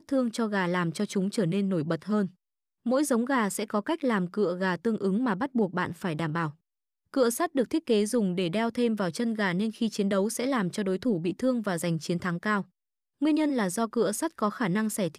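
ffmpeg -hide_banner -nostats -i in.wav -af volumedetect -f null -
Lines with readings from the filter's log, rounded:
mean_volume: -27.8 dB
max_volume: -13.2 dB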